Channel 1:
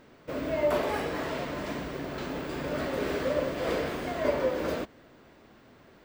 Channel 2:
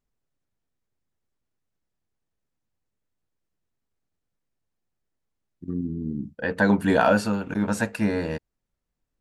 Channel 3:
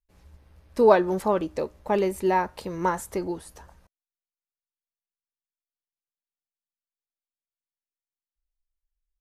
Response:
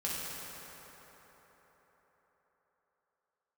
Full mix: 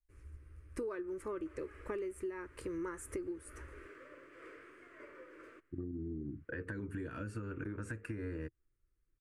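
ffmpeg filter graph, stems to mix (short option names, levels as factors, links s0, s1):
-filter_complex "[0:a]highpass=f=1200:p=1,adelay=750,volume=0.316[s0];[1:a]adelay=100,volume=1.26[s1];[2:a]highshelf=f=3600:g=11.5,volume=1.06[s2];[s0][s1]amix=inputs=2:normalize=0,acrossover=split=280|3000[s3][s4][s5];[s4]acompressor=threshold=0.0398:ratio=6[s6];[s3][s6][s5]amix=inputs=3:normalize=0,alimiter=limit=0.0891:level=0:latency=1:release=219,volume=1[s7];[s2][s7]amix=inputs=2:normalize=0,firequalizer=gain_entry='entry(120,0);entry(190,-18);entry(330,2);entry(760,-26);entry(1200,-4);entry(2300,-8);entry(3700,-25);entry(9500,-12);entry(13000,-30)':delay=0.05:min_phase=1,acompressor=threshold=0.0141:ratio=16"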